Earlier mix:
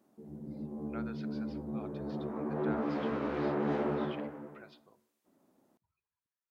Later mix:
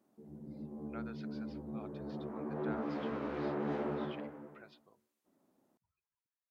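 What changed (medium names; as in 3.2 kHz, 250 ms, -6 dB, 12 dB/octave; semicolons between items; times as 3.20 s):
background -4.0 dB; reverb: off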